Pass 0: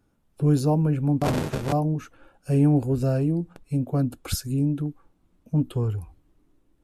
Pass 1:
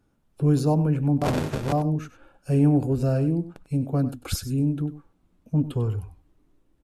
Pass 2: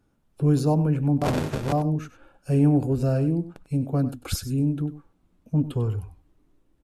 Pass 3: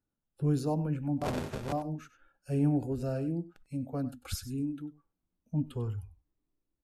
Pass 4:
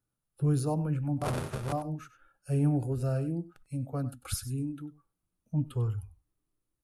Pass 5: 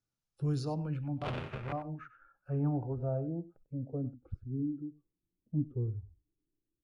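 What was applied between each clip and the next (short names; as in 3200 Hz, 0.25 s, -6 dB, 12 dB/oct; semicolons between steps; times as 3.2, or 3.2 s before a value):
high shelf 9700 Hz -4 dB; echo 97 ms -14 dB
nothing audible
spectral noise reduction 12 dB; gain -8 dB
thirty-one-band EQ 125 Hz +8 dB, 250 Hz -5 dB, 1250 Hz +6 dB, 10000 Hz +11 dB
low-pass sweep 5900 Hz -> 350 Hz, 0.44–4.17; gain -5.5 dB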